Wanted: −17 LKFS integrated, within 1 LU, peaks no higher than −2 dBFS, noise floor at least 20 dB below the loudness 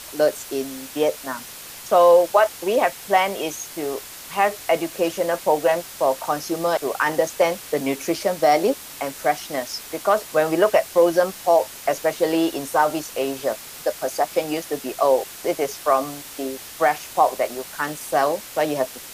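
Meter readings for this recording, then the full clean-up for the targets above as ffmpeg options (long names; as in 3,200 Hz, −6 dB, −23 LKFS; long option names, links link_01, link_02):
background noise floor −39 dBFS; target noise floor −42 dBFS; integrated loudness −22.0 LKFS; sample peak −4.0 dBFS; target loudness −17.0 LKFS
→ -af "afftdn=noise_reduction=6:noise_floor=-39"
-af "volume=5dB,alimiter=limit=-2dB:level=0:latency=1"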